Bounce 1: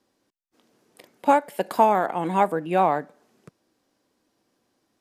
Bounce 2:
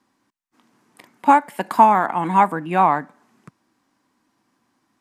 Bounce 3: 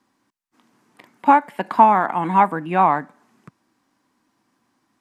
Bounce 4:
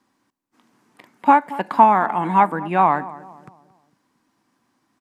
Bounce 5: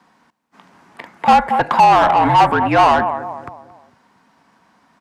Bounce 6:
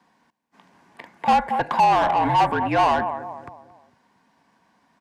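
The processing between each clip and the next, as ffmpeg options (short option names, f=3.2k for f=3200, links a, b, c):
-af "equalizer=f=125:t=o:w=1:g=5,equalizer=f=250:t=o:w=1:g=8,equalizer=f=500:t=o:w=1:g=-7,equalizer=f=1k:t=o:w=1:g=11,equalizer=f=2k:t=o:w=1:g=6,equalizer=f=8k:t=o:w=1:g=4,volume=-2dB"
-filter_complex "[0:a]acrossover=split=4200[a][b];[b]acompressor=threshold=-56dB:ratio=4:attack=1:release=60[c];[a][c]amix=inputs=2:normalize=0"
-filter_complex "[0:a]asplit=2[a][b];[b]adelay=226,lowpass=f=1.1k:p=1,volume=-16dB,asplit=2[c][d];[d]adelay=226,lowpass=f=1.1k:p=1,volume=0.45,asplit=2[e][f];[f]adelay=226,lowpass=f=1.1k:p=1,volume=0.45,asplit=2[g][h];[h]adelay=226,lowpass=f=1.1k:p=1,volume=0.45[i];[a][c][e][g][i]amix=inputs=5:normalize=0"
-filter_complex "[0:a]asplit=2[a][b];[b]highpass=f=720:p=1,volume=25dB,asoftclip=type=tanh:threshold=-1dB[c];[a][c]amix=inputs=2:normalize=0,lowpass=f=1.8k:p=1,volume=-6dB,afreqshift=-50,volume=-1.5dB"
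-af "bandreject=f=1.3k:w=7,volume=-6.5dB"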